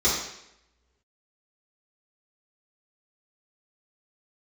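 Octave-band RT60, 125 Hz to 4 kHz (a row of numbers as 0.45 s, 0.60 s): 0.85 s, 0.80 s, 0.85 s, 0.80 s, 0.80 s, 0.75 s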